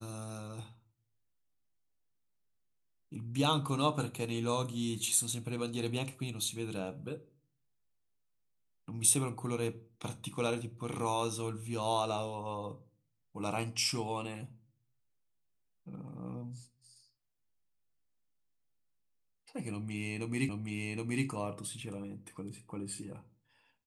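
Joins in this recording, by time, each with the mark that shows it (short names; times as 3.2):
20.49 repeat of the last 0.77 s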